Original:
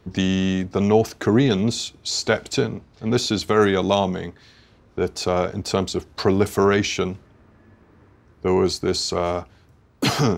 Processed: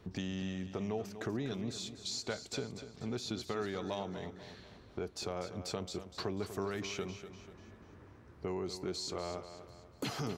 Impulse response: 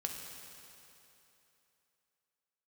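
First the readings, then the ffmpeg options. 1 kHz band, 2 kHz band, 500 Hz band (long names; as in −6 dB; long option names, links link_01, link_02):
−18.5 dB, −18.0 dB, −19.0 dB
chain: -filter_complex "[0:a]acompressor=threshold=-39dB:ratio=2.5,asplit=2[link_01][link_02];[link_02]aecho=0:1:245|490|735|980|1225:0.282|0.124|0.0546|0.024|0.0106[link_03];[link_01][link_03]amix=inputs=2:normalize=0,volume=-4dB"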